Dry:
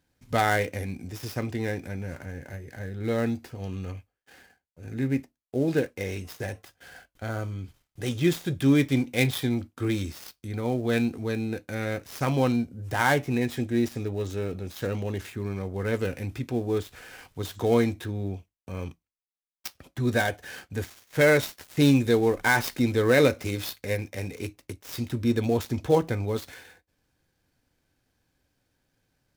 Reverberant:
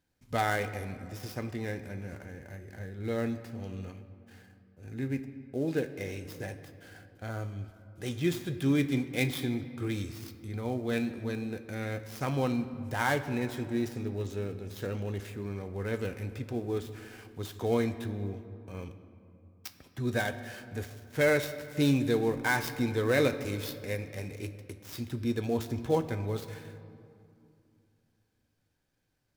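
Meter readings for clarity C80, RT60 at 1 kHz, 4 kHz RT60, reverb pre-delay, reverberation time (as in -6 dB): 12.5 dB, 2.6 s, 1.5 s, 3 ms, 2.6 s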